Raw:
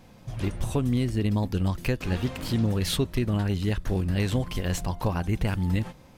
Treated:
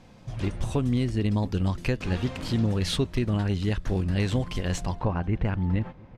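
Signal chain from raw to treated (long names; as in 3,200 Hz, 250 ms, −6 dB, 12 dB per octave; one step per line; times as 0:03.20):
low-pass filter 7,900 Hz 12 dB per octave, from 0:04.99 2,100 Hz
slap from a distant wall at 120 metres, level −24 dB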